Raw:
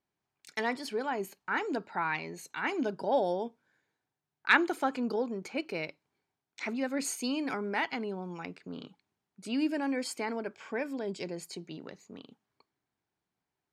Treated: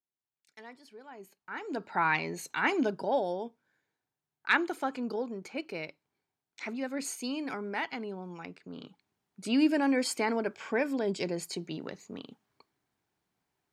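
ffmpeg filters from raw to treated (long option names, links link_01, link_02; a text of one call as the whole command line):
ffmpeg -i in.wav -af "volume=12.5dB,afade=type=in:start_time=1.05:duration=0.58:silence=0.334965,afade=type=in:start_time=1.63:duration=0.43:silence=0.237137,afade=type=out:start_time=2.62:duration=0.61:silence=0.421697,afade=type=in:start_time=8.72:duration=0.8:silence=0.421697" out.wav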